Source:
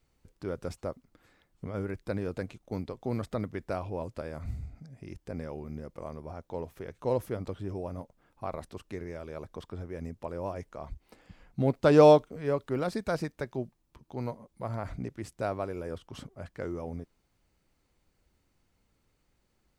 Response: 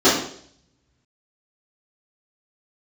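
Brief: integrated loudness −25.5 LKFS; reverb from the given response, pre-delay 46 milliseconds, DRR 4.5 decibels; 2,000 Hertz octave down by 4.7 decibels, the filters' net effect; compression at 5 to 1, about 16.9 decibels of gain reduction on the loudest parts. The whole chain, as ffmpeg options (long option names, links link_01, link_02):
-filter_complex "[0:a]equalizer=frequency=2000:width_type=o:gain=-7,acompressor=threshold=-33dB:ratio=5,asplit=2[link_01][link_02];[1:a]atrim=start_sample=2205,adelay=46[link_03];[link_02][link_03]afir=irnorm=-1:irlink=0,volume=-28.5dB[link_04];[link_01][link_04]amix=inputs=2:normalize=0,volume=12dB"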